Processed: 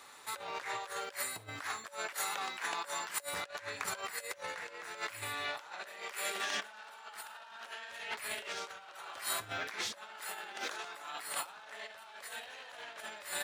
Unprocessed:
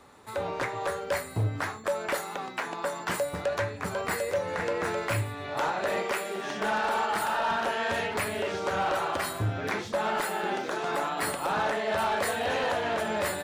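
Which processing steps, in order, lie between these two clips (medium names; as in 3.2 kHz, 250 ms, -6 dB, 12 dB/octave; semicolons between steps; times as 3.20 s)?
bass shelf 240 Hz -8 dB; compressor with a negative ratio -36 dBFS, ratio -0.5; tilt shelf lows -9 dB, about 870 Hz; trim -7 dB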